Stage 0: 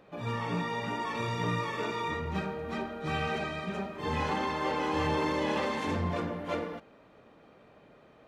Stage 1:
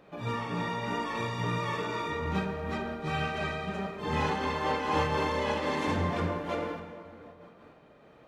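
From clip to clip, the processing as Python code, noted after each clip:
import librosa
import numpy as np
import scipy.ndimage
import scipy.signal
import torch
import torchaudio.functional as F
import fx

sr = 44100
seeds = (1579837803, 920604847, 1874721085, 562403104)

y = fx.rev_plate(x, sr, seeds[0], rt60_s=2.7, hf_ratio=0.6, predelay_ms=0, drr_db=5.0)
y = fx.am_noise(y, sr, seeds[1], hz=5.7, depth_pct=55)
y = y * 10.0 ** (3.0 / 20.0)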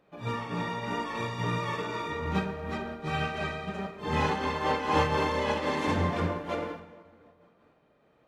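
y = fx.upward_expand(x, sr, threshold_db=-50.0, expansion=1.5)
y = y * 10.0 ** (3.5 / 20.0)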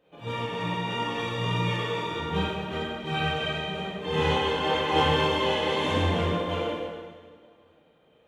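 y = fx.graphic_eq_31(x, sr, hz=(500, 1250, 3150, 5000), db=(6, -4, 11, -6))
y = fx.rev_plate(y, sr, seeds[2], rt60_s=1.4, hf_ratio=1.0, predelay_ms=0, drr_db=-5.5)
y = y * 10.0 ** (-4.5 / 20.0)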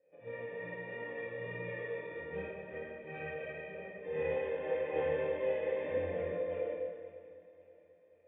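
y = fx.formant_cascade(x, sr, vowel='e')
y = fx.echo_feedback(y, sr, ms=542, feedback_pct=47, wet_db=-20.0)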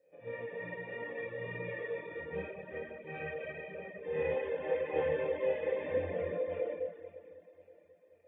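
y = fx.dereverb_blind(x, sr, rt60_s=0.57)
y = y * 10.0 ** (2.5 / 20.0)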